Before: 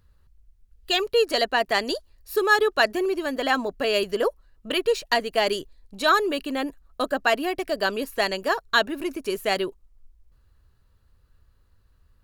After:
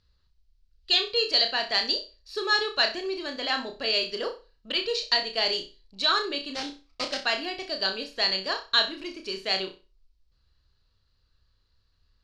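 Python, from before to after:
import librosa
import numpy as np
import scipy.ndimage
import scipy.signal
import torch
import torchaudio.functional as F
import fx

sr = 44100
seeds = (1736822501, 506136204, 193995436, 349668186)

y = fx.sample_hold(x, sr, seeds[0], rate_hz=3600.0, jitter_pct=20, at=(6.54, 7.18), fade=0.02)
y = fx.ladder_lowpass(y, sr, hz=5200.0, resonance_pct=55)
y = fx.high_shelf(y, sr, hz=2900.0, db=10.5)
y = fx.room_flutter(y, sr, wall_m=5.4, rt60_s=0.31)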